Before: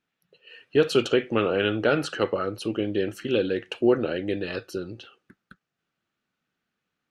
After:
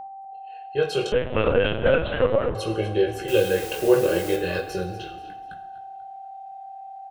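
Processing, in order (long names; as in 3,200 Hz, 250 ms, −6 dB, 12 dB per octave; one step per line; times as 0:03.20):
fade in at the beginning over 1.52 s
comb filter 1.9 ms, depth 90%
in parallel at +0.5 dB: speech leveller 2 s
on the sum: chorus effect 0.34 Hz, delay 18 ms, depth 4.9 ms
0:03.28–0:04.36: bit-depth reduction 6 bits, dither triangular
steady tone 780 Hz −30 dBFS
on a send: echo with shifted repeats 243 ms, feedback 36%, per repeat −34 Hz, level −15 dB
on the sum: coupled-rooms reverb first 0.83 s, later 2.5 s, DRR 6.5 dB
0:01.12–0:02.55: linear-prediction vocoder at 8 kHz pitch kept
level −4 dB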